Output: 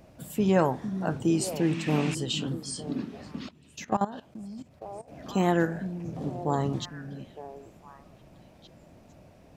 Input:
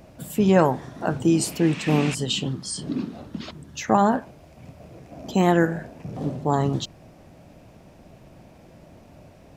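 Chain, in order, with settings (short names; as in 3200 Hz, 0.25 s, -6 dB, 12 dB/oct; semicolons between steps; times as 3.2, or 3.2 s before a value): delay with a stepping band-pass 0.455 s, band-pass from 200 Hz, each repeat 1.4 oct, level -7.5 dB; 3.48–5.08 level quantiser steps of 17 dB; gain -5.5 dB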